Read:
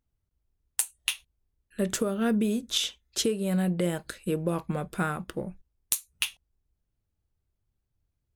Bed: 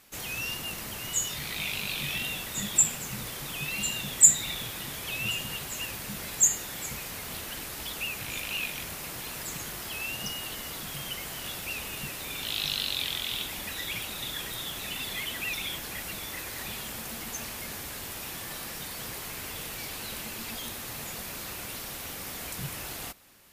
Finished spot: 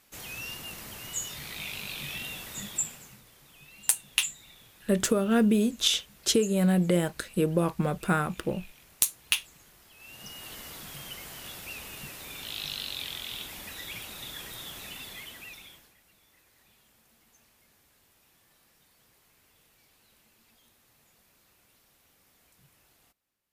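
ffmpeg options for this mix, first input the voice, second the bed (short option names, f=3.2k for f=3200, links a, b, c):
-filter_complex "[0:a]adelay=3100,volume=3dB[a];[1:a]volume=9dB,afade=t=out:st=2.53:d=0.69:silence=0.188365,afade=t=in:st=9.96:d=0.59:silence=0.199526,afade=t=out:st=14.77:d=1.18:silence=0.0891251[b];[a][b]amix=inputs=2:normalize=0"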